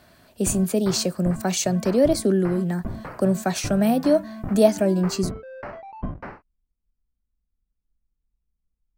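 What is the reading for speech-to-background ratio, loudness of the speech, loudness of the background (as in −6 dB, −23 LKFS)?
14.5 dB, −22.0 LKFS, −36.5 LKFS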